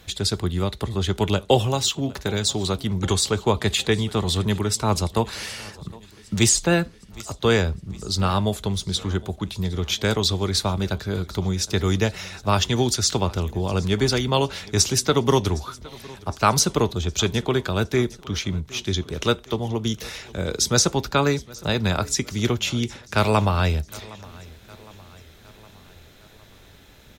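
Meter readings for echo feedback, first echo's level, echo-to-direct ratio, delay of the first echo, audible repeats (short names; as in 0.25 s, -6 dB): 56%, -22.0 dB, -20.5 dB, 0.762 s, 3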